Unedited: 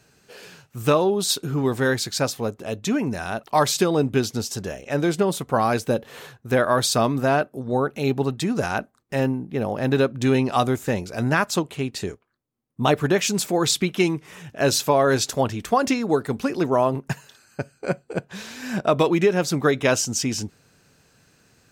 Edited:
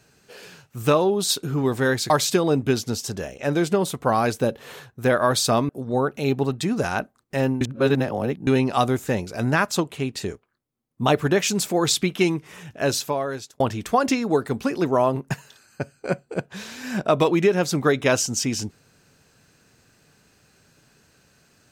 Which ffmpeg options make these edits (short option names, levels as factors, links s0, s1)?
-filter_complex "[0:a]asplit=6[s0][s1][s2][s3][s4][s5];[s0]atrim=end=2.102[s6];[s1]atrim=start=3.568:end=7.162[s7];[s2]atrim=start=7.478:end=9.402[s8];[s3]atrim=start=9.398:end=10.262,asetpts=PTS-STARTPTS,areverse[s9];[s4]atrim=start=10.258:end=15.39,asetpts=PTS-STARTPTS,afade=t=out:st=4.172:d=0.96[s10];[s5]atrim=start=15.39,asetpts=PTS-STARTPTS,afade=t=in:d=0.004:c=hsin[s11];[s6][s7]acrossfade=d=0.004:c1=hsin:c2=hsin[s12];[s12][s8]acrossfade=d=0.004:c1=hsin:c2=hsin[s13];[s13][s9]acrossfade=d=0.004:c1=hsin:c2=hsin[s14];[s10][s11]concat=n=2:v=0:a=1[s15];[s14][s15]acrossfade=d=0.004:c1=hsin:c2=hsin"